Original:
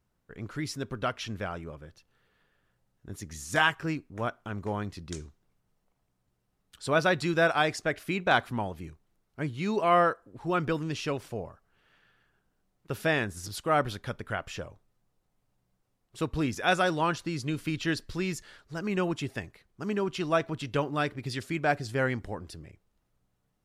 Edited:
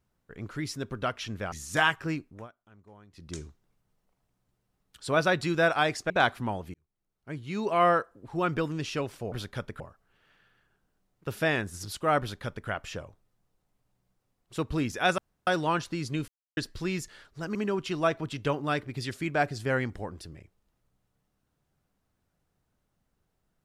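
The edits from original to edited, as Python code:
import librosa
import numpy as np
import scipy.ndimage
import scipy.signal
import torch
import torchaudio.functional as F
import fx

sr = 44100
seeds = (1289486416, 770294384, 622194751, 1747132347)

y = fx.edit(x, sr, fx.cut(start_s=1.52, length_s=1.79),
    fx.fade_down_up(start_s=3.94, length_s=1.29, db=-21.0, fade_s=0.33, curve='qsin'),
    fx.cut(start_s=7.89, length_s=0.32),
    fx.fade_in_span(start_s=8.85, length_s=1.1),
    fx.duplicate(start_s=13.83, length_s=0.48, to_s=11.43),
    fx.insert_room_tone(at_s=16.81, length_s=0.29),
    fx.silence(start_s=17.62, length_s=0.29),
    fx.cut(start_s=18.89, length_s=0.95), tone=tone)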